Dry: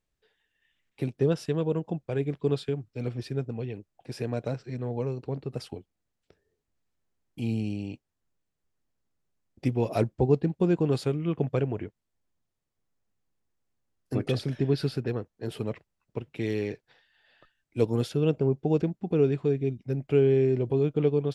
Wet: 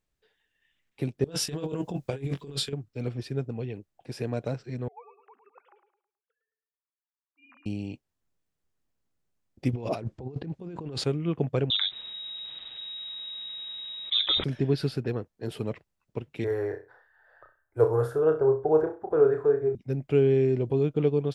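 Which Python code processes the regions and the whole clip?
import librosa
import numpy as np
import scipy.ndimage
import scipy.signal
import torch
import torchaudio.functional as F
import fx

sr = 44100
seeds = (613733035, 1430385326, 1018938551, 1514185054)

y = fx.chain(x, sr, fx.high_shelf(hz=3100.0, db=11.5),
    fx.doubler(ms=22.0, db=-7),
    fx.over_compress(threshold_db=-31.0, ratio=-0.5), at=(1.24, 2.73))
y = fx.chain(y, sr, fx.sine_speech(),
    fx.ladder_bandpass(hz=1300.0, resonance_pct=50),
    fx.echo_feedback(ms=107, feedback_pct=36, wet_db=-9.5), at=(4.88, 7.66))
y = fx.chain(y, sr, fx.lowpass(hz=7500.0, slope=12),
    fx.over_compress(threshold_db=-35.0, ratio=-1.0),
    fx.doppler_dist(depth_ms=0.11), at=(9.73, 11.04))
y = fx.chain(y, sr, fx.freq_invert(carrier_hz=3800),
    fx.env_flatten(amount_pct=70), at=(11.7, 14.44))
y = fx.chain(y, sr, fx.curve_eq(hz=(120.0, 190.0, 400.0, 580.0, 1600.0, 2500.0, 4900.0, 7800.0, 12000.0), db=(0, -27, 3, 5, 9, -21, -17, -9, -1)),
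    fx.room_flutter(wall_m=5.5, rt60_s=0.31), at=(16.44, 19.75))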